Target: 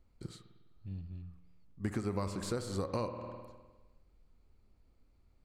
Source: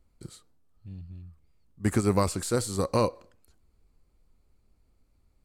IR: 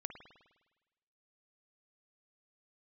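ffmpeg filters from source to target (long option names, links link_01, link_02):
-filter_complex "[0:a]asplit=2[link_01][link_02];[1:a]atrim=start_sample=2205,lowpass=6400[link_03];[link_02][link_03]afir=irnorm=-1:irlink=0,volume=6.5dB[link_04];[link_01][link_04]amix=inputs=2:normalize=0,acompressor=threshold=-25dB:ratio=4,volume=-8.5dB"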